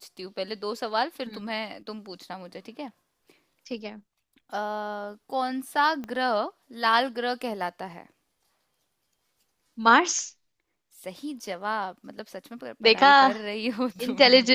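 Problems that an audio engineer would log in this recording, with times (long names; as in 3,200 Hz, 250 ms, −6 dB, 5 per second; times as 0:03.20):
0:06.04: click −23 dBFS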